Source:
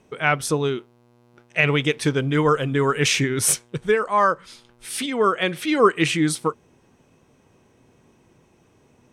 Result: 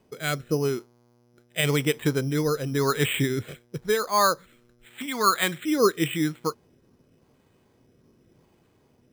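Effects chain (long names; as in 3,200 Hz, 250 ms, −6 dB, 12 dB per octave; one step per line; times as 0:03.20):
rotating-speaker cabinet horn 0.9 Hz
0:05.01–0:05.64: graphic EQ with 10 bands 500 Hz −7 dB, 1,000 Hz +6 dB, 2,000 Hz +4 dB
bad sample-rate conversion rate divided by 8×, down filtered, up hold
level −2 dB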